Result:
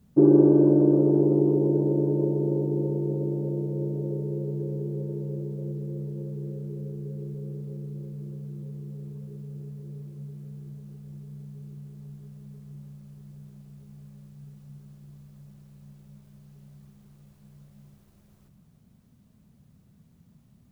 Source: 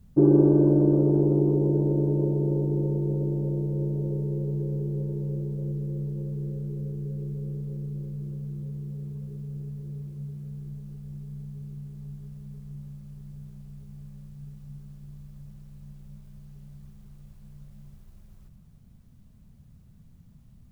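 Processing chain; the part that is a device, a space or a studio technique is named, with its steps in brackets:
filter by subtraction (in parallel: low-pass filter 300 Hz 12 dB per octave + polarity inversion)

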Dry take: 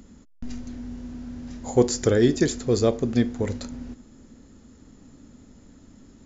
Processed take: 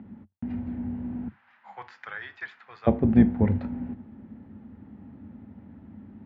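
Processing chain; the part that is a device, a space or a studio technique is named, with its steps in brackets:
0:01.28–0:02.87: Chebyshev high-pass filter 1,200 Hz, order 3
high-frequency loss of the air 81 metres
sub-octave bass pedal (sub-octave generator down 2 octaves, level −2 dB; loudspeaker in its box 77–2,400 Hz, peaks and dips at 94 Hz +8 dB, 210 Hz +9 dB, 460 Hz −4 dB, 830 Hz +7 dB, 1,200 Hz −3 dB)

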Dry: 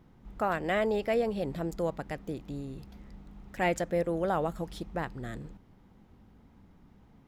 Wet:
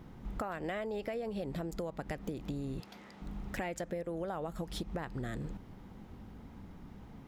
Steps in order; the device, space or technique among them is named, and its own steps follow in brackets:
0:02.80–0:03.22: meter weighting curve A
serial compression, peaks first (downward compressor, threshold −38 dBFS, peak gain reduction 13.5 dB; downward compressor 3 to 1, threshold −43 dBFS, peak gain reduction 6.5 dB)
level +7.5 dB

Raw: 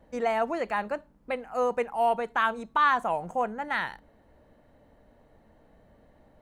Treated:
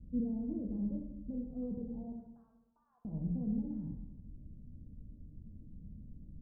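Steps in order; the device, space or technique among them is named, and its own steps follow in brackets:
0:02.12–0:03.05: inverse Chebyshev high-pass filter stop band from 270 Hz, stop band 60 dB
club heard from the street (brickwall limiter −23.5 dBFS, peak gain reduction 10.5 dB; low-pass filter 210 Hz 24 dB per octave; convolution reverb RT60 1.0 s, pre-delay 6 ms, DRR −0.5 dB)
tilt shelving filter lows −4 dB, about 1,400 Hz
level +12.5 dB

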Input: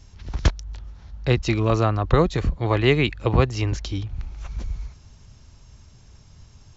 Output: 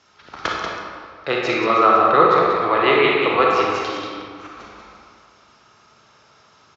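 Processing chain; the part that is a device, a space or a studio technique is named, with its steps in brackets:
station announcement (band-pass filter 440–4,400 Hz; parametric band 1,300 Hz +10.5 dB 0.34 octaves; loudspeakers that aren't time-aligned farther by 20 metres −10 dB, 64 metres −6 dB; convolution reverb RT60 2.0 s, pre-delay 30 ms, DRR −1.5 dB)
0:01.64–0:03.22: low-pass filter 5,300 Hz 12 dB per octave
level +2.5 dB

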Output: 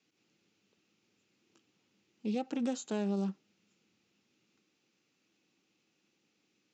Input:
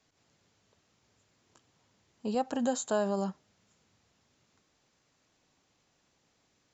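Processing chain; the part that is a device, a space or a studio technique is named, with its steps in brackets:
full-range speaker at full volume (highs frequency-modulated by the lows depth 0.2 ms; loudspeaker in its box 170–6,800 Hz, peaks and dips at 200 Hz +7 dB, 330 Hz +8 dB, 650 Hz −9 dB, 1,000 Hz −8 dB, 1,700 Hz −4 dB, 2,600 Hz +7 dB)
level −4.5 dB

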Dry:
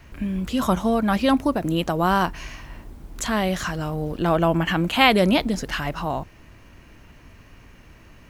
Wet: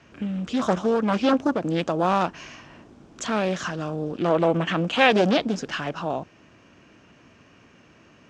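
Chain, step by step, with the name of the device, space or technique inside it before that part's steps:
full-range speaker at full volume (highs frequency-modulated by the lows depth 0.53 ms; loudspeaker in its box 170–6,800 Hz, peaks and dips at 920 Hz −4 dB, 2,000 Hz −6 dB, 4,200 Hz −5 dB)

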